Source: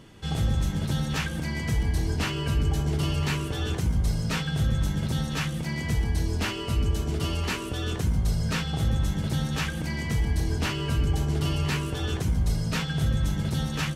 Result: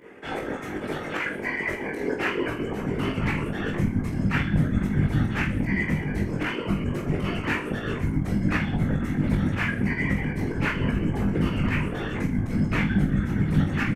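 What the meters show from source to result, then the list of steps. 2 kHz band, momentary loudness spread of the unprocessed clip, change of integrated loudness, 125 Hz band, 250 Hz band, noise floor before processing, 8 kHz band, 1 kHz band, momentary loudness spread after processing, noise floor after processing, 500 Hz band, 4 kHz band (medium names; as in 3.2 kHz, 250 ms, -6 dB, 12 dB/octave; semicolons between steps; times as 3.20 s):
+6.0 dB, 3 LU, +1.5 dB, -0.5 dB, +6.0 dB, -33 dBFS, under -10 dB, +2.5 dB, 6 LU, -33 dBFS, +4.5 dB, -6.5 dB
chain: reverb removal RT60 0.71 s; dynamic bell 4.1 kHz, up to +7 dB, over -51 dBFS, Q 2.3; high-pass sweep 370 Hz -> 160 Hz, 2.09–3.50 s; in parallel at +0.5 dB: peak limiter -25 dBFS, peak gain reduction 12 dB; on the sum: resonant high shelf 2.9 kHz -11 dB, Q 3; whisper effect; volume shaper 154 bpm, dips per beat 2, -11 dB, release 85 ms; on a send: reverse bouncing-ball echo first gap 20 ms, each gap 1.3×, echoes 5; on the sum: trim -3.5 dB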